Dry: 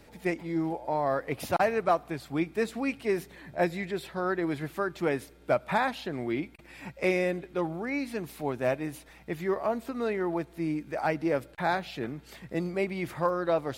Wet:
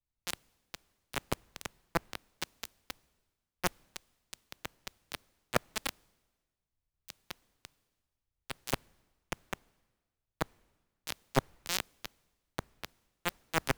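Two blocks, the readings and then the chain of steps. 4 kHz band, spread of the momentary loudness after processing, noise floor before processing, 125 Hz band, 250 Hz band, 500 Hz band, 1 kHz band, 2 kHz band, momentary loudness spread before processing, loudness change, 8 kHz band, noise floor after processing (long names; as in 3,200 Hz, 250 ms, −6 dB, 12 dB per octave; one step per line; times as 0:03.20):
+3.0 dB, 16 LU, −54 dBFS, −8.0 dB, −14.5 dB, −15.0 dB, −10.5 dB, −7.0 dB, 8 LU, −9.0 dB, +6.5 dB, below −85 dBFS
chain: spectral magnitudes quantised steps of 15 dB
parametric band 2,300 Hz −7 dB 2.5 octaves
reversed playback
downward compressor 10 to 1, threshold −36 dBFS, peak gain reduction 14 dB
reversed playback
bit reduction 5 bits
background noise pink −72 dBFS
multiband upward and downward expander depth 100%
level +5.5 dB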